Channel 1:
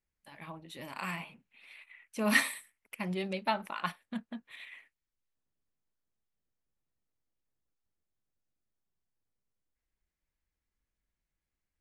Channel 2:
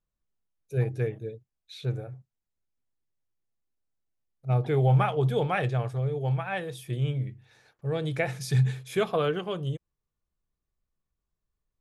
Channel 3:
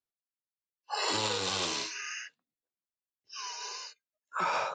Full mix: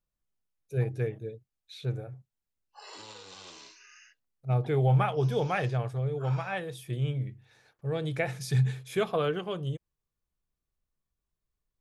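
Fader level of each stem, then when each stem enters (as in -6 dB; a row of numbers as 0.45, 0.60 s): off, -2.0 dB, -16.0 dB; off, 0.00 s, 1.85 s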